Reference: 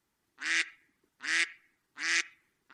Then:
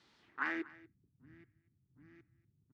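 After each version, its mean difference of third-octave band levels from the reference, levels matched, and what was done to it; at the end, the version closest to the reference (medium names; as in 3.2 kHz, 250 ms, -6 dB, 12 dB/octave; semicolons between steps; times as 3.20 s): 13.5 dB: high-pass 73 Hz; dynamic bell 520 Hz, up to -6 dB, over -50 dBFS, Q 0.73; low-pass sweep 4.1 kHz -> 120 Hz, 0.20–0.80 s; delay 240 ms -20.5 dB; trim +9.5 dB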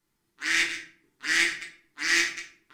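7.5 dB: chunks repeated in reverse 109 ms, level -12 dB; peaking EQ 1 kHz -3.5 dB 2.5 oct; waveshaping leveller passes 1; simulated room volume 47 m³, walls mixed, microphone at 0.81 m; trim +1 dB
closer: second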